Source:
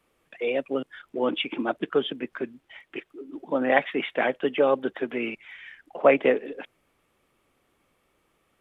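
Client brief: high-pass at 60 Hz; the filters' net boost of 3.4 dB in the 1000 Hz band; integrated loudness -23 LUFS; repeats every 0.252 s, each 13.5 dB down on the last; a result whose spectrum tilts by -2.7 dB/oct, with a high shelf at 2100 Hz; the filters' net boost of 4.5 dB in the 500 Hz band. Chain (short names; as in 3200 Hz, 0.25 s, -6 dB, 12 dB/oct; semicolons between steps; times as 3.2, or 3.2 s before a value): HPF 60 Hz; bell 500 Hz +4.5 dB; bell 1000 Hz +3.5 dB; high shelf 2100 Hz -3.5 dB; feedback echo 0.252 s, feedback 21%, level -13.5 dB; gain -0.5 dB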